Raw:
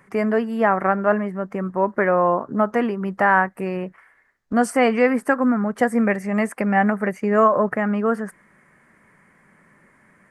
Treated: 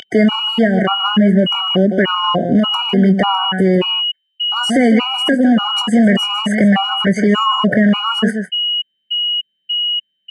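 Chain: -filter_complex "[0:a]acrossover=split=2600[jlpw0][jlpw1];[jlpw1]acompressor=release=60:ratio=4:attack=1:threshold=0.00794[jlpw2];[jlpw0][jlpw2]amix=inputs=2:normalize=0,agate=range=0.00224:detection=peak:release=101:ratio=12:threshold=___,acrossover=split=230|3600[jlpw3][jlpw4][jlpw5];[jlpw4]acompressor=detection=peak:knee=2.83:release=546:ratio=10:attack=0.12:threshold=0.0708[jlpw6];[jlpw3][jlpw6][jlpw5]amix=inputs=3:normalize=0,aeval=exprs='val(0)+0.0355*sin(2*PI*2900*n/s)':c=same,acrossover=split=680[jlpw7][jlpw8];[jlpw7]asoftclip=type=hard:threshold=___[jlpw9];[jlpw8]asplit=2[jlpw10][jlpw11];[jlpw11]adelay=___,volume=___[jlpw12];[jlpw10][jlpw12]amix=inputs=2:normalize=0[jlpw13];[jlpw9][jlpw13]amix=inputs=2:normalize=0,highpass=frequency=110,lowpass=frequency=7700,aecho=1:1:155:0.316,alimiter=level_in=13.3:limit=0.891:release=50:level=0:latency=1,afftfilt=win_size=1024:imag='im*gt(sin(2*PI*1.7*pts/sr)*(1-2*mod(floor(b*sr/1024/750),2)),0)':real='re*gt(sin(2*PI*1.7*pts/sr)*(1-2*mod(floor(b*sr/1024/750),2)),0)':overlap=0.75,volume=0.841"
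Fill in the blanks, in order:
0.00631, 0.0562, 24, 0.355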